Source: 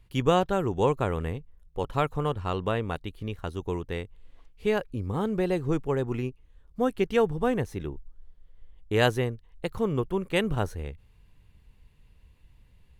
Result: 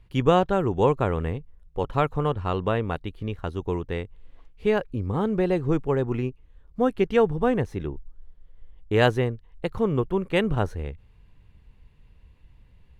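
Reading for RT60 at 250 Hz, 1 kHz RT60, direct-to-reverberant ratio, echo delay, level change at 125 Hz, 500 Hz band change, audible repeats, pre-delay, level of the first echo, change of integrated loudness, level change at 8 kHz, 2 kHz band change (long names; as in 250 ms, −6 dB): no reverb audible, no reverb audible, no reverb audible, no echo audible, +3.5 dB, +3.5 dB, no echo audible, no reverb audible, no echo audible, +3.0 dB, can't be measured, +2.0 dB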